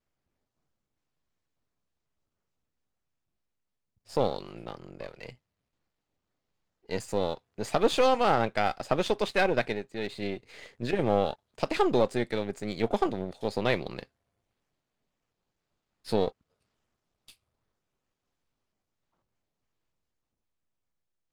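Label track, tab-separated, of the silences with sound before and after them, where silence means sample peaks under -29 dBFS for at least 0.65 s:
5.290000	6.910000	silence
14.030000	16.090000	silence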